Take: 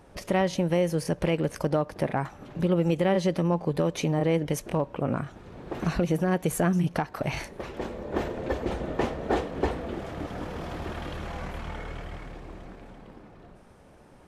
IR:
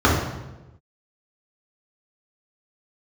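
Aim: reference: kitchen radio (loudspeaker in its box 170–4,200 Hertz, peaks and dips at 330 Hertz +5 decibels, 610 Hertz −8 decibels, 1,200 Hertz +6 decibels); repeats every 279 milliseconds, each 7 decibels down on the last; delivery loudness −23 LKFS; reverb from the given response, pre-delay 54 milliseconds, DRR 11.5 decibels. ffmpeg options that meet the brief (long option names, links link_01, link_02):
-filter_complex "[0:a]aecho=1:1:279|558|837|1116|1395:0.447|0.201|0.0905|0.0407|0.0183,asplit=2[link_01][link_02];[1:a]atrim=start_sample=2205,adelay=54[link_03];[link_02][link_03]afir=irnorm=-1:irlink=0,volume=-35dB[link_04];[link_01][link_04]amix=inputs=2:normalize=0,highpass=170,equalizer=frequency=330:width_type=q:width=4:gain=5,equalizer=frequency=610:width_type=q:width=4:gain=-8,equalizer=frequency=1200:width_type=q:width=4:gain=6,lowpass=frequency=4200:width=0.5412,lowpass=frequency=4200:width=1.3066,volume=4.5dB"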